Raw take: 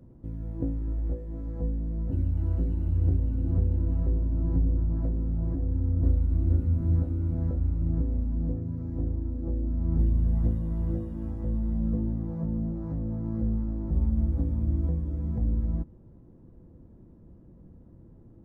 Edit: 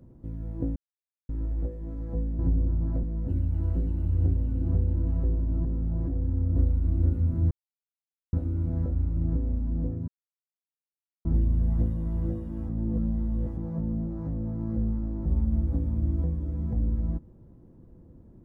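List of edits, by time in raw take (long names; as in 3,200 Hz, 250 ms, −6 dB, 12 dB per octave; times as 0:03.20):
0:00.76: splice in silence 0.53 s
0:04.48–0:05.12: move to 0:01.86
0:06.98: splice in silence 0.82 s
0:08.73–0:09.90: silence
0:11.34–0:12.22: reverse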